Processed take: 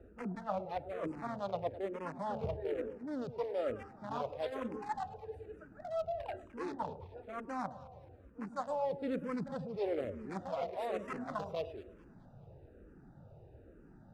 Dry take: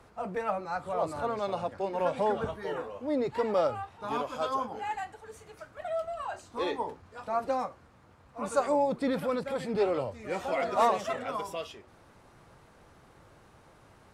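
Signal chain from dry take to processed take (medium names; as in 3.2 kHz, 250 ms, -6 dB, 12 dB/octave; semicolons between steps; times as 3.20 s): local Wiener filter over 41 samples; reverse; compression 6:1, threshold -38 dBFS, peak gain reduction 17.5 dB; reverse; echo whose repeats swap between lows and highs 106 ms, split 860 Hz, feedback 66%, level -13 dB; barber-pole phaser -1.1 Hz; trim +6 dB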